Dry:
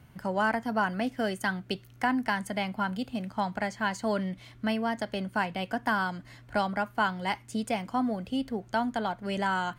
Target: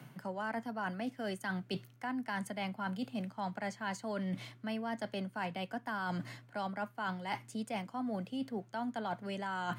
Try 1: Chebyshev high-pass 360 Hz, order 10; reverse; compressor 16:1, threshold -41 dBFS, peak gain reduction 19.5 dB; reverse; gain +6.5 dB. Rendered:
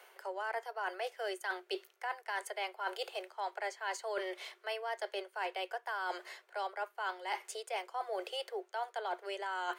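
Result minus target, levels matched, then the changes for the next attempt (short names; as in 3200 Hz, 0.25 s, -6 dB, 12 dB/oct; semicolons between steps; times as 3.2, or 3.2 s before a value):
500 Hz band +2.5 dB
change: Chebyshev high-pass 110 Hz, order 10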